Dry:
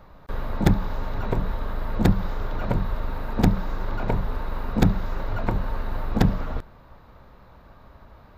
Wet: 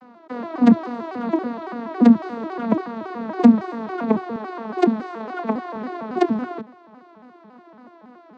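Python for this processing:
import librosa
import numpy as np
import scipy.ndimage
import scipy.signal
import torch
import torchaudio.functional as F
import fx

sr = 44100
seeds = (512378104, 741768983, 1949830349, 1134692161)

y = fx.vocoder_arp(x, sr, chord='bare fifth', root=58, every_ms=143)
y = fx.highpass(y, sr, hz=290.0, slope=12, at=(4.36, 5.76))
y = fx.vibrato_shape(y, sr, shape='saw_down', rate_hz=3.6, depth_cents=160.0)
y = F.gain(torch.from_numpy(y), 8.0).numpy()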